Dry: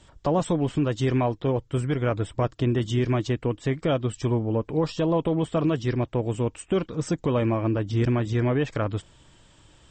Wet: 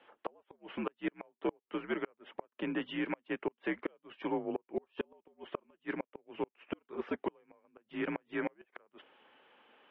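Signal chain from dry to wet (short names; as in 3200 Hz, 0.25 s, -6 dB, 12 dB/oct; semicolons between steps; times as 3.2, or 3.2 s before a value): mistuned SSB -78 Hz 430–2900 Hz; flipped gate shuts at -21 dBFS, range -36 dB; gain -1.5 dB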